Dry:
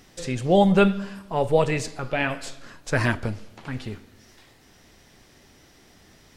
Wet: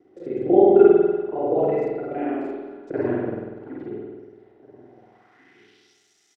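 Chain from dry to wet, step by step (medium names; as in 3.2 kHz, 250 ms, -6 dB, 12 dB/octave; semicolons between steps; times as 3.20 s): time reversed locally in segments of 33 ms; de-hum 47.14 Hz, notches 33; small resonant body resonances 340/740/1400/2000 Hz, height 9 dB, ringing for 35 ms; band-pass sweep 380 Hz -> 6.8 kHz, 4.72–6.01 s; echo from a far wall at 290 m, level -24 dB; spring tank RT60 1.3 s, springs 48 ms, chirp 40 ms, DRR -4.5 dB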